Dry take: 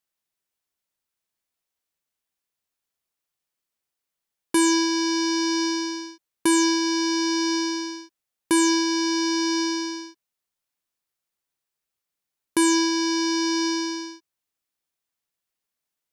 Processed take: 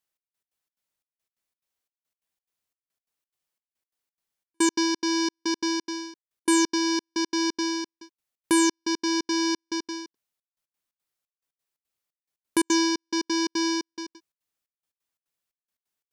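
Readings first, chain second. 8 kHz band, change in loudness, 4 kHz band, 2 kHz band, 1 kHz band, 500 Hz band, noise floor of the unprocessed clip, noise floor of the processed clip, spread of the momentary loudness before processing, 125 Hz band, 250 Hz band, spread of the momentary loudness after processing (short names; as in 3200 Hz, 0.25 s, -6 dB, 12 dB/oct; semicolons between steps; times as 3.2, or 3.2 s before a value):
-3.0 dB, -3.0 dB, -3.5 dB, -3.0 dB, -3.0 dB, -3.0 dB, -85 dBFS, under -85 dBFS, 12 LU, n/a, -3.0 dB, 14 LU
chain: step gate "xx..x.xx.x" 176 bpm -60 dB; gain -1 dB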